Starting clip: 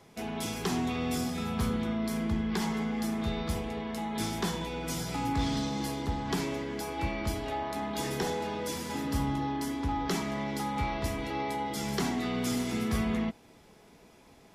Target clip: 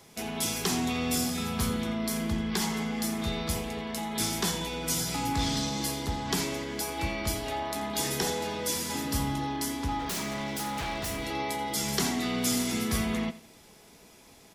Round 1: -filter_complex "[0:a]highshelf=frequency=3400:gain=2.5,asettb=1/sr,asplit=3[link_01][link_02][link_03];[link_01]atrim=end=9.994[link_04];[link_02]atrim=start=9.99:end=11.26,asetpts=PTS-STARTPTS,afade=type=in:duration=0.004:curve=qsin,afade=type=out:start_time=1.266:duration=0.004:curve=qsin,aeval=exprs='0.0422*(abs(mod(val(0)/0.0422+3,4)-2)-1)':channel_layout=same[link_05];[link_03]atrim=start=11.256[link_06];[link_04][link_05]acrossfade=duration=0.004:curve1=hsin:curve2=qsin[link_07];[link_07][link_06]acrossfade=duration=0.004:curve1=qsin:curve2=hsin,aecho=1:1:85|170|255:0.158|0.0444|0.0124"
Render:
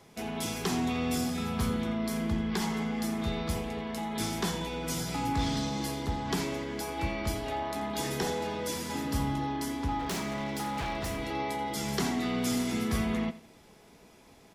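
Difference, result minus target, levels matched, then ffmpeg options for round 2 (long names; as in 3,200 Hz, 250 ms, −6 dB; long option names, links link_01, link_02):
8,000 Hz band −5.5 dB
-filter_complex "[0:a]highshelf=frequency=3400:gain=11.5,asettb=1/sr,asplit=3[link_01][link_02][link_03];[link_01]atrim=end=9.994[link_04];[link_02]atrim=start=9.99:end=11.26,asetpts=PTS-STARTPTS,afade=type=in:duration=0.004:curve=qsin,afade=type=out:start_time=1.266:duration=0.004:curve=qsin,aeval=exprs='0.0422*(abs(mod(val(0)/0.0422+3,4)-2)-1)':channel_layout=same[link_05];[link_03]atrim=start=11.256[link_06];[link_04][link_05]acrossfade=duration=0.004:curve1=hsin:curve2=qsin[link_07];[link_07][link_06]acrossfade=duration=0.004:curve1=qsin:curve2=hsin,aecho=1:1:85|170|255:0.158|0.0444|0.0124"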